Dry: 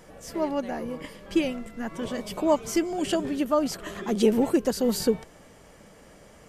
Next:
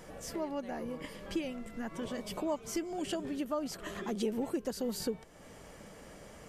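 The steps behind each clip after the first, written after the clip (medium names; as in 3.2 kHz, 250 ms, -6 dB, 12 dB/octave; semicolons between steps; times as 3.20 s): compression 2:1, threshold -41 dBFS, peak gain reduction 14 dB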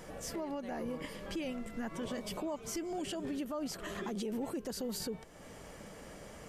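peak limiter -32 dBFS, peak gain reduction 9.5 dB; trim +1.5 dB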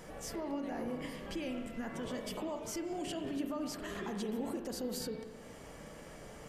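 spring tank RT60 1.4 s, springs 32/39 ms, chirp 60 ms, DRR 4.5 dB; trim -1.5 dB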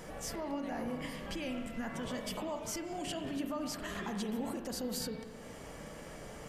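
dynamic bell 380 Hz, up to -7 dB, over -53 dBFS, Q 1.8; trim +3 dB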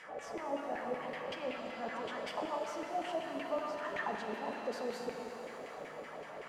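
LFO band-pass saw down 5.3 Hz 420–2400 Hz; pitch-shifted reverb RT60 3.6 s, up +7 st, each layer -8 dB, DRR 3.5 dB; trim +7 dB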